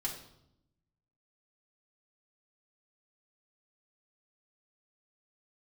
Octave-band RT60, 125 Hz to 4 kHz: 1.4 s, 1.2 s, 0.85 s, 0.75 s, 0.60 s, 0.65 s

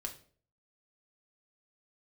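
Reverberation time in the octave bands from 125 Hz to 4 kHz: 0.65 s, 0.50 s, 0.55 s, 0.40 s, 0.40 s, 0.35 s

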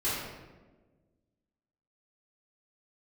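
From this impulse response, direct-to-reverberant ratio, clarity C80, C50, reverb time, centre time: -12.0 dB, 1.5 dB, -1.5 dB, 1.3 s, 88 ms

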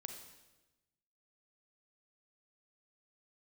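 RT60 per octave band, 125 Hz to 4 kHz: 1.4 s, 1.3 s, 1.2 s, 1.0 s, 1.0 s, 1.0 s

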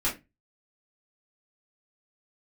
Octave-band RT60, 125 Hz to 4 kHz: 0.40 s, 0.30 s, 0.25 s, 0.20 s, 0.20 s, 0.20 s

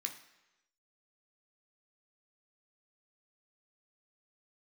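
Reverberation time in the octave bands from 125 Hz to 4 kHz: 0.90 s, 0.90 s, 1.0 s, 1.0 s, 1.0 s, 0.95 s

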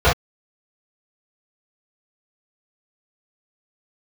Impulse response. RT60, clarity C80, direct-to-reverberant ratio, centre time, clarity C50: no single decay rate, 32.0 dB, -12.0 dB, 31 ms, 6.0 dB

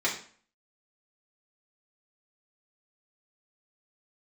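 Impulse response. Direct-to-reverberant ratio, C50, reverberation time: -5.5 dB, 8.0 dB, 0.45 s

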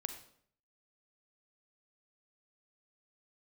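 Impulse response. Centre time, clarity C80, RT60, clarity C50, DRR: 14 ms, 11.5 dB, 0.60 s, 9.0 dB, 7.0 dB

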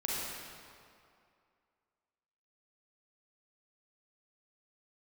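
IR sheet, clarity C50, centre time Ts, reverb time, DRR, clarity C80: -4.0 dB, 151 ms, 2.4 s, -6.0 dB, -1.5 dB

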